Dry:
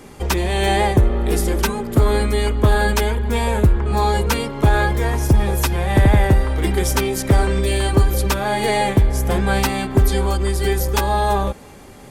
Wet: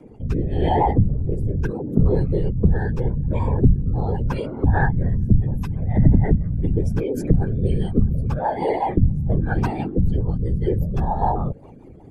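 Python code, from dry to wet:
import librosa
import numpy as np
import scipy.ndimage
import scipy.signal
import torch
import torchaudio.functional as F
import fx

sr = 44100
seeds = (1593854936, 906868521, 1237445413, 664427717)

y = fx.spec_expand(x, sr, power=2.2)
y = fx.whisperise(y, sr, seeds[0])
y = fx.rotary_switch(y, sr, hz=0.8, then_hz=5.0, switch_at_s=5.35)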